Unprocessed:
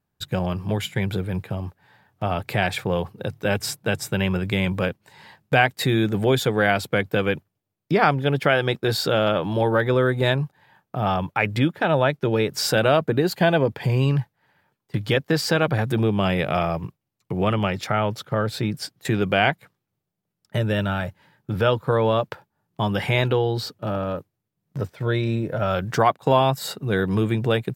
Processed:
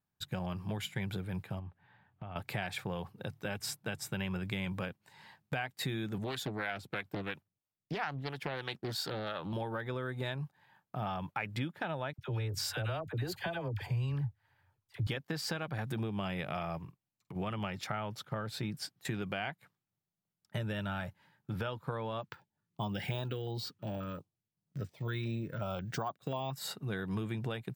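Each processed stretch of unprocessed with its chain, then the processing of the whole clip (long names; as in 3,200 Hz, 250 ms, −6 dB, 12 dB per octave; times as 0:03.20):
0:01.59–0:02.36: low-pass filter 3,500 Hz 24 dB per octave + low-shelf EQ 140 Hz +9 dB + downward compressor 10 to 1, threshold −29 dBFS
0:06.18–0:09.53: two-band tremolo in antiphase 3 Hz, crossover 560 Hz + highs frequency-modulated by the lows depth 0.5 ms
0:12.13–0:15.07: low shelf with overshoot 130 Hz +10.5 dB, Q 3 + downward compressor 1.5 to 1, threshold −23 dBFS + all-pass dispersion lows, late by 55 ms, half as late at 840 Hz
0:16.78–0:17.36: downward compressor 5 to 1, threshold −31 dBFS + double-tracking delay 47 ms −13.5 dB
0:22.22–0:26.56: bad sample-rate conversion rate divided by 2×, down filtered, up hold + notch on a step sequencer 5.6 Hz 640–2,100 Hz
whole clip: low-shelf EQ 130 Hz −6.5 dB; downward compressor, threshold −23 dBFS; drawn EQ curve 170 Hz 0 dB, 480 Hz −7 dB, 810 Hz −2 dB; level −7 dB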